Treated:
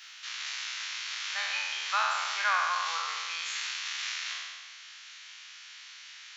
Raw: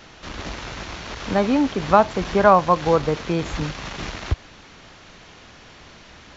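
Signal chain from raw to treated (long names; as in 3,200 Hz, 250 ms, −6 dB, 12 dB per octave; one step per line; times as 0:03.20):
peak hold with a decay on every bin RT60 1.63 s
Bessel high-pass filter 2,300 Hz, order 4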